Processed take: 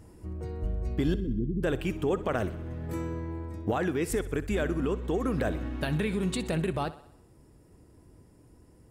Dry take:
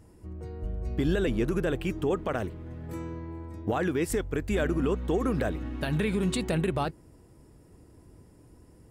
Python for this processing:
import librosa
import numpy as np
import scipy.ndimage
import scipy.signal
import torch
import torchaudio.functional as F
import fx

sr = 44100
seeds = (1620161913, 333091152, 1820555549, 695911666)

p1 = fx.cheby2_lowpass(x, sr, hz=1000.0, order=4, stop_db=60, at=(1.14, 1.63))
p2 = p1 + fx.echo_thinned(p1, sr, ms=63, feedback_pct=56, hz=150.0, wet_db=-16.5, dry=0)
y = fx.rider(p2, sr, range_db=3, speed_s=0.5)